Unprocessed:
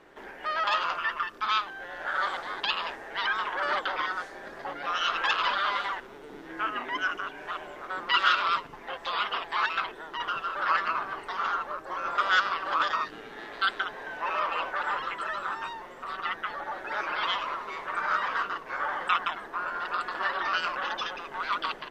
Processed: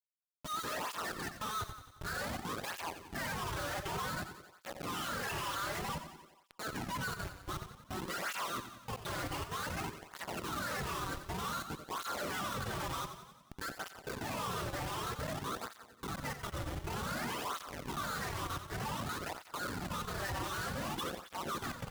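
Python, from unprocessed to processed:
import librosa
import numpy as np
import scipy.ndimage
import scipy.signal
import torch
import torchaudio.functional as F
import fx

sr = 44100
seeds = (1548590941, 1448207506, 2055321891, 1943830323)

y = fx.spec_ripple(x, sr, per_octave=0.64, drift_hz=2.0, depth_db=14)
y = fx.low_shelf(y, sr, hz=160.0, db=-10.0)
y = fx.schmitt(y, sr, flips_db=-29.5)
y = fx.echo_feedback(y, sr, ms=90, feedback_pct=59, wet_db=-10)
y = fx.flanger_cancel(y, sr, hz=0.54, depth_ms=4.9)
y = y * librosa.db_to_amplitude(-7.0)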